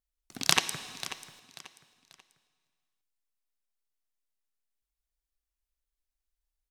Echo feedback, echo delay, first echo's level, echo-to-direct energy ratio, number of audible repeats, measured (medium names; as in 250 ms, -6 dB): 32%, 539 ms, -14.5 dB, -14.0 dB, 3